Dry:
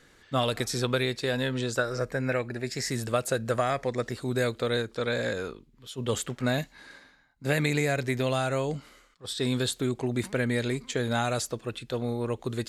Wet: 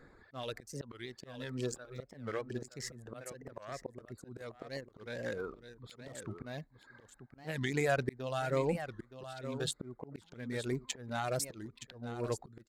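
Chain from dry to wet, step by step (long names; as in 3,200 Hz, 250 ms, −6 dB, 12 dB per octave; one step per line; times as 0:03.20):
adaptive Wiener filter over 15 samples
reverb reduction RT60 0.88 s
0:01.05–0:01.59: downward compressor 3 to 1, threshold −31 dBFS, peak gain reduction 5.5 dB
volume swells 704 ms
single-tap delay 919 ms −11 dB
wow of a warped record 45 rpm, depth 250 cents
level +2.5 dB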